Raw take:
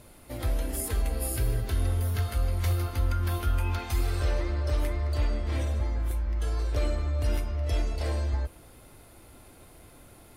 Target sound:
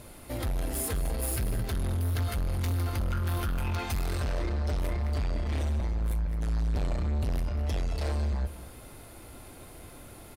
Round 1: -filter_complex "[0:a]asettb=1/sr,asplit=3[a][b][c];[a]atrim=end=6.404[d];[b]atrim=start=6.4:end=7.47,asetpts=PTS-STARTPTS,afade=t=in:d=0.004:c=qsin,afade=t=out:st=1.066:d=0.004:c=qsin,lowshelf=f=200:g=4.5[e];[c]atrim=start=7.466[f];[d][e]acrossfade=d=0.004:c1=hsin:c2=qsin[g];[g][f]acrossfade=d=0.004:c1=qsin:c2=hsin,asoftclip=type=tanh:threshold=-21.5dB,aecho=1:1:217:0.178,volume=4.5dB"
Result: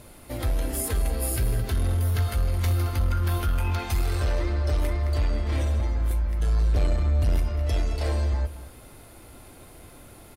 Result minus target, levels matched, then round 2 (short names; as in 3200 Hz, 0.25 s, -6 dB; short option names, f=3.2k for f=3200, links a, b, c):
soft clip: distortion -8 dB
-filter_complex "[0:a]asettb=1/sr,asplit=3[a][b][c];[a]atrim=end=6.404[d];[b]atrim=start=6.4:end=7.47,asetpts=PTS-STARTPTS,afade=t=in:d=0.004:c=qsin,afade=t=out:st=1.066:d=0.004:c=qsin,lowshelf=f=200:g=4.5[e];[c]atrim=start=7.466[f];[d][e]acrossfade=d=0.004:c1=hsin:c2=qsin[g];[g][f]acrossfade=d=0.004:c1=qsin:c2=hsin,asoftclip=type=tanh:threshold=-31dB,aecho=1:1:217:0.178,volume=4.5dB"